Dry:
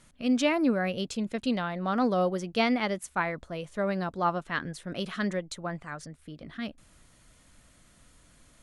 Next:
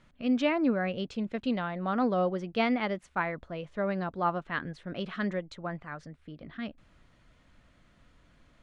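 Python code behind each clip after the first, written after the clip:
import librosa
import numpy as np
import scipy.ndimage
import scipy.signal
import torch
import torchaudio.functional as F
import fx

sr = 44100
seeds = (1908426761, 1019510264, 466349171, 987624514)

y = scipy.signal.sosfilt(scipy.signal.butter(2, 3200.0, 'lowpass', fs=sr, output='sos'), x)
y = F.gain(torch.from_numpy(y), -1.5).numpy()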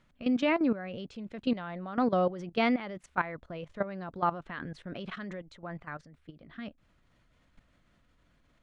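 y = fx.level_steps(x, sr, step_db=14)
y = F.gain(torch.from_numpy(y), 3.0).numpy()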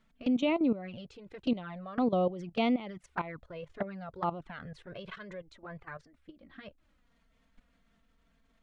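y = fx.env_flanger(x, sr, rest_ms=4.6, full_db=-26.5)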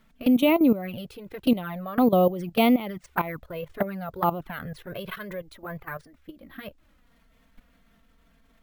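y = np.repeat(x[::3], 3)[:len(x)]
y = F.gain(torch.from_numpy(y), 8.5).numpy()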